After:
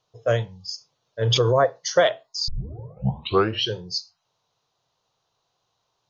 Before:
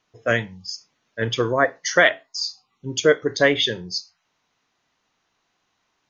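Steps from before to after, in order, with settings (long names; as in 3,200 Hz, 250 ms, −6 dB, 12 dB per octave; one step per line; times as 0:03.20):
0:02.48: tape start 1.30 s
graphic EQ with 10 bands 125 Hz +11 dB, 250 Hz −11 dB, 500 Hz +8 dB, 1,000 Hz +4 dB, 2,000 Hz −11 dB, 4,000 Hz +7 dB
0:01.22–0:01.71: background raised ahead of every attack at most 23 dB per second
level −4.5 dB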